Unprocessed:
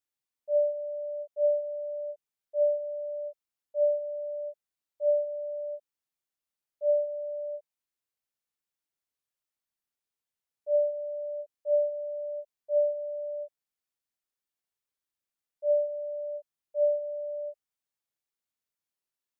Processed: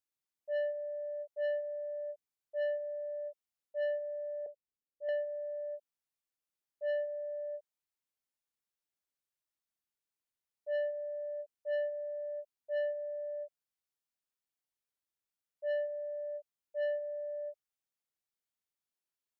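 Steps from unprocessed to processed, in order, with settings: 4.46–5.09 s: steep low-pass 570 Hz 96 dB/octave; saturation -26 dBFS, distortion -11 dB; trim -4 dB

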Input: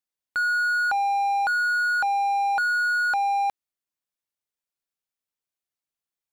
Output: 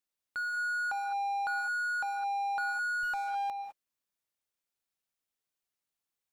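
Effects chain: peak limiter -29 dBFS, peak gain reduction 11 dB; gated-style reverb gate 230 ms rising, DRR 6.5 dB; 3.03–3.49 s: sliding maximum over 3 samples

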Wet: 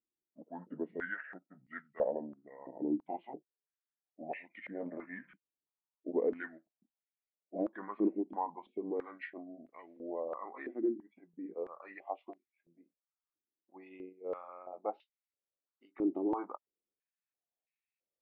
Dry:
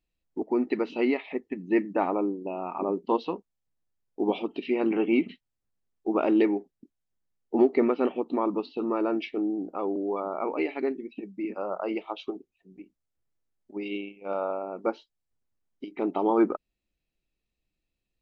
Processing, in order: pitch bend over the whole clip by -6 st ending unshifted; step-sequenced band-pass 3 Hz 330–2100 Hz

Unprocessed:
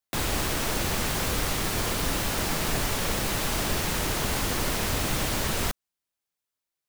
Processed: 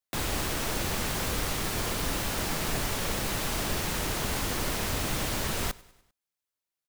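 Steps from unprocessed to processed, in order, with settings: feedback delay 99 ms, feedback 53%, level -22.5 dB; trim -3 dB

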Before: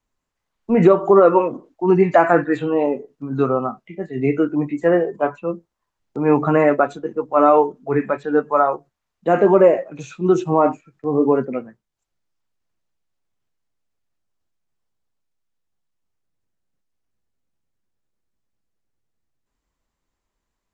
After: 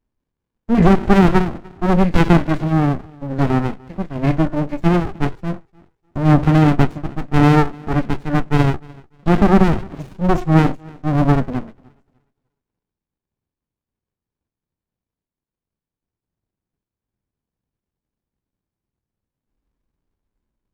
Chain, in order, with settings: on a send: thinning echo 298 ms, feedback 26%, high-pass 260 Hz, level -23.5 dB; on the sum: sliding maximum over 65 samples; trim +4 dB

